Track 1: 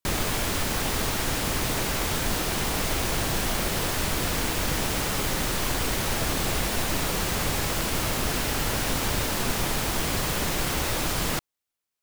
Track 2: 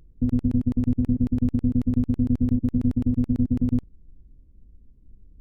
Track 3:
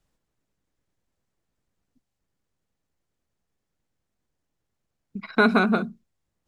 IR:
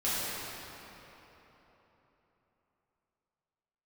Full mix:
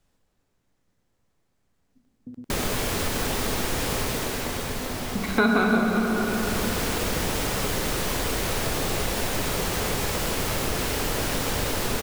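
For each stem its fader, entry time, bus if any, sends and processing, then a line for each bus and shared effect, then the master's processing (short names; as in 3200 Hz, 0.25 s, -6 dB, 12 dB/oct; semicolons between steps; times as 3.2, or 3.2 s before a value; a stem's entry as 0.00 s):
-0.5 dB, 2.45 s, send -16 dB, bell 460 Hz +4.5 dB 0.6 oct; auto duck -16 dB, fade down 1.15 s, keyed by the third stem
-9.0 dB, 2.05 s, no send, HPF 200 Hz 12 dB/oct; compressor 3:1, threshold -30 dBFS, peak gain reduction 7 dB
+1.5 dB, 0.00 s, send -7 dB, dry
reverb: on, RT60 3.8 s, pre-delay 4 ms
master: compressor 2:1, threshold -23 dBFS, peak gain reduction 8.5 dB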